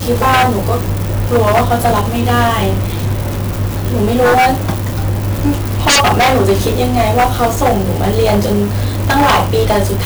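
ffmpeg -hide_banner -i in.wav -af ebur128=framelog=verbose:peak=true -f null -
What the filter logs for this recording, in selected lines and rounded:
Integrated loudness:
  I:         -13.1 LUFS
  Threshold: -23.1 LUFS
Loudness range:
  LRA:         2.2 LU
  Threshold: -33.2 LUFS
  LRA low:   -14.5 LUFS
  LRA high:  -12.2 LUFS
True peak:
  Peak:       -3.8 dBFS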